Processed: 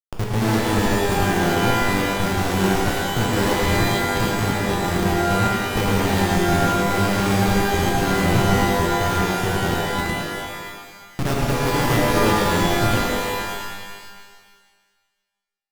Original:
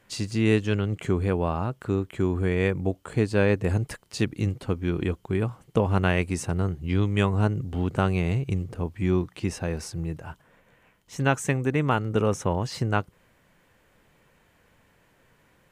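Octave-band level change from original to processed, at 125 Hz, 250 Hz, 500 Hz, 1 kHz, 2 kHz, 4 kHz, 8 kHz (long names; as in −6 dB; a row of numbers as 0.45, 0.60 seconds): +3.0, +5.5, +5.5, +12.5, +10.0, +13.5, +12.0 decibels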